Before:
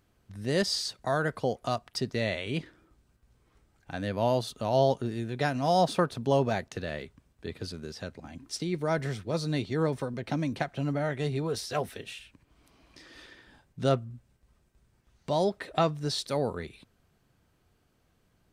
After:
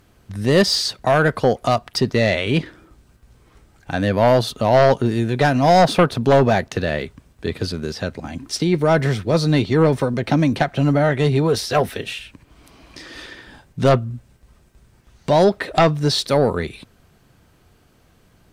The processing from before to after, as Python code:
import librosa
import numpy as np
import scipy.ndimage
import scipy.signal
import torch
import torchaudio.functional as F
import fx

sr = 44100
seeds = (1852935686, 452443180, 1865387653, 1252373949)

y = fx.fold_sine(x, sr, drive_db=6, ceiling_db=-11.0)
y = fx.dynamic_eq(y, sr, hz=8100.0, q=0.88, threshold_db=-44.0, ratio=4.0, max_db=-5)
y = F.gain(torch.from_numpy(y), 4.0).numpy()